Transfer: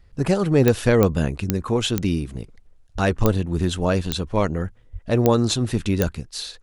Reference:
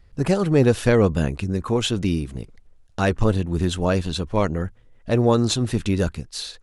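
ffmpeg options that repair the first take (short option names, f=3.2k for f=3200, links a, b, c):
-filter_complex "[0:a]adeclick=t=4,asplit=3[a][b][c];[a]afade=t=out:st=2.94:d=0.02[d];[b]highpass=f=140:w=0.5412,highpass=f=140:w=1.3066,afade=t=in:st=2.94:d=0.02,afade=t=out:st=3.06:d=0.02[e];[c]afade=t=in:st=3.06:d=0.02[f];[d][e][f]amix=inputs=3:normalize=0,asplit=3[g][h][i];[g]afade=t=out:st=4.92:d=0.02[j];[h]highpass=f=140:w=0.5412,highpass=f=140:w=1.3066,afade=t=in:st=4.92:d=0.02,afade=t=out:st=5.04:d=0.02[k];[i]afade=t=in:st=5.04:d=0.02[l];[j][k][l]amix=inputs=3:normalize=0"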